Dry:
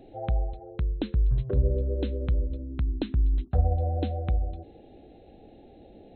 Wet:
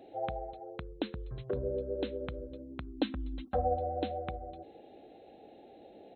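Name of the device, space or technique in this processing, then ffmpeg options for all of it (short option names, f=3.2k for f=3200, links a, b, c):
filter by subtraction: -filter_complex "[0:a]asplit=2[a][b];[b]lowpass=680,volume=-1[c];[a][c]amix=inputs=2:normalize=0,asplit=3[d][e][f];[d]afade=t=out:st=2.97:d=0.02[g];[e]aecho=1:1:3.8:0.97,afade=t=in:st=2.97:d=0.02,afade=t=out:st=3.78:d=0.02[h];[f]afade=t=in:st=3.78:d=0.02[i];[g][h][i]amix=inputs=3:normalize=0,volume=-1dB"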